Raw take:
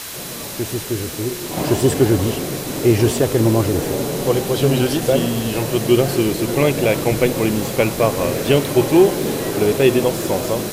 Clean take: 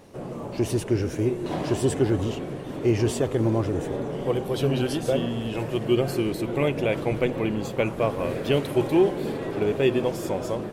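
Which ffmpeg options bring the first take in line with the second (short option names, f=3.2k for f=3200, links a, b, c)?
-af "bandreject=f=4k:w=30,afwtdn=0.032,asetnsamples=n=441:p=0,asendcmd='1.57 volume volume -7.5dB',volume=0dB"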